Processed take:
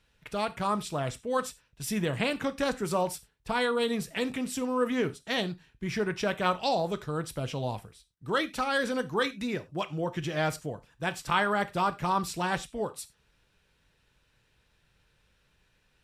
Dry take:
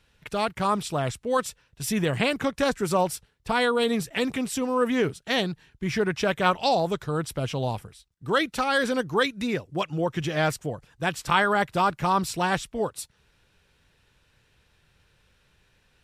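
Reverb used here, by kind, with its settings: non-linear reverb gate 0.12 s falling, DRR 11 dB; gain -5 dB

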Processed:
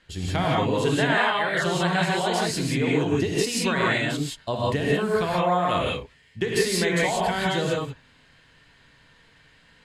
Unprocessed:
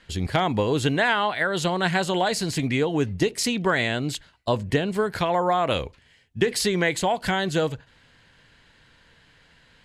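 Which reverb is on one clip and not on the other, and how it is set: non-linear reverb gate 0.2 s rising, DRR -5 dB; gain -5.5 dB

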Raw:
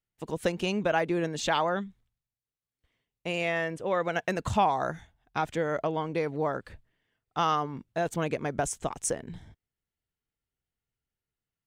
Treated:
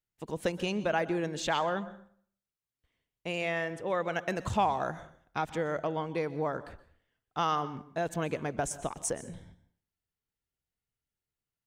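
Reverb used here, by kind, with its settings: plate-style reverb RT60 0.54 s, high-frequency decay 0.8×, pre-delay 0.11 s, DRR 16 dB; gain -3 dB

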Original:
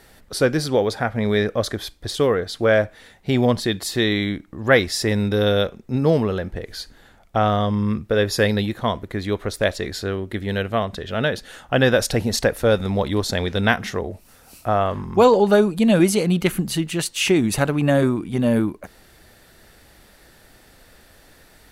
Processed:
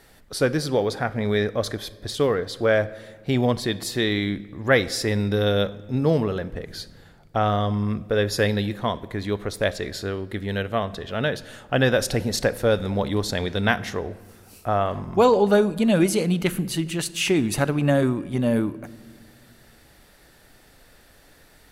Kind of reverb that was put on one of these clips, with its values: shoebox room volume 1800 m³, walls mixed, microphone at 0.31 m; gain -3 dB

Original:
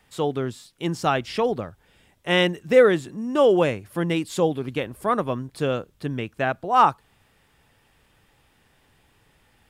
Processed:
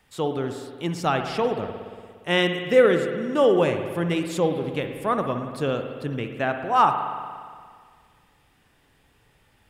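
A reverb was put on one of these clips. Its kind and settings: spring tank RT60 1.9 s, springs 58 ms, chirp 55 ms, DRR 6 dB; gain -1.5 dB

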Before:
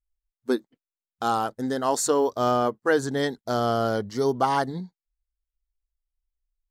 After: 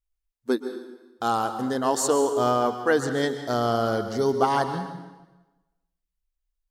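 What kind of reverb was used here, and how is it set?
plate-style reverb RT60 1.1 s, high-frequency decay 0.9×, pre-delay 0.11 s, DRR 8.5 dB

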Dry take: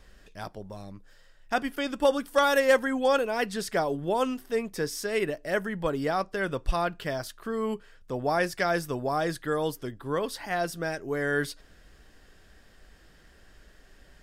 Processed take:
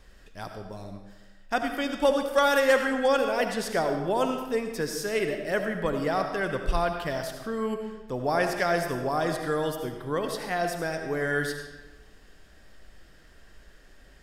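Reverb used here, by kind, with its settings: digital reverb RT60 1.1 s, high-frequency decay 0.8×, pre-delay 35 ms, DRR 5 dB

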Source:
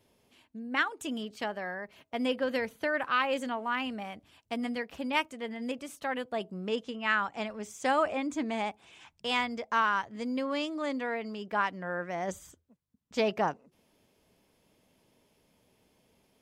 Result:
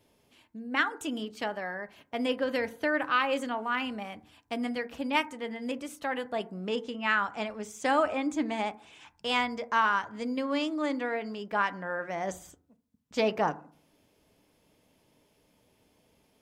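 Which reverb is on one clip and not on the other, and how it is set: FDN reverb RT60 0.49 s, low-frequency decay 1.25×, high-frequency decay 0.3×, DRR 11.5 dB; gain +1 dB

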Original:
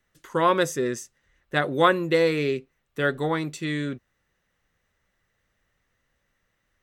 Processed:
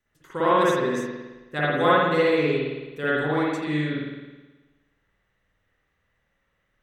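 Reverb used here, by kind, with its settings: spring tank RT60 1.2 s, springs 53 ms, chirp 35 ms, DRR -8 dB; gain -7 dB

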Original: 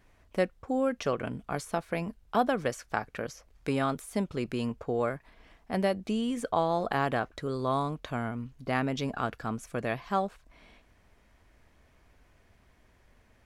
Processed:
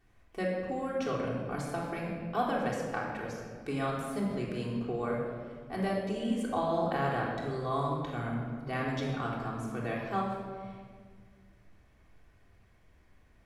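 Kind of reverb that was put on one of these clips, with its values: shoebox room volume 2200 m³, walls mixed, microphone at 3.5 m; gain -8.5 dB

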